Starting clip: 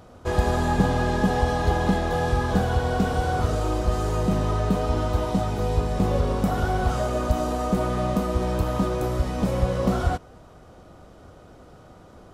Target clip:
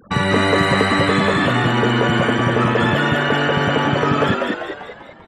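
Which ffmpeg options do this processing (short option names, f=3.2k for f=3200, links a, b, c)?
-filter_complex "[0:a]acrossover=split=5300[a][b];[b]acompressor=threshold=-52dB:ratio=4:attack=1:release=60[c];[a][c]amix=inputs=2:normalize=0,afftfilt=real='re*gte(hypot(re,im),0.0178)':imag='im*gte(hypot(re,im),0.0178)':win_size=1024:overlap=0.75,asplit=2[d][e];[e]alimiter=limit=-14.5dB:level=0:latency=1:release=63,volume=-2.5dB[f];[d][f]amix=inputs=2:normalize=0,asplit=7[g][h][i][j][k][l][m];[h]adelay=460,afreqshift=43,volume=-3.5dB[n];[i]adelay=920,afreqshift=86,volume=-9.9dB[o];[j]adelay=1380,afreqshift=129,volume=-16.3dB[p];[k]adelay=1840,afreqshift=172,volume=-22.6dB[q];[l]adelay=2300,afreqshift=215,volume=-29dB[r];[m]adelay=2760,afreqshift=258,volume=-35.4dB[s];[g][n][o][p][q][r][s]amix=inputs=7:normalize=0,asetrate=103194,aresample=44100"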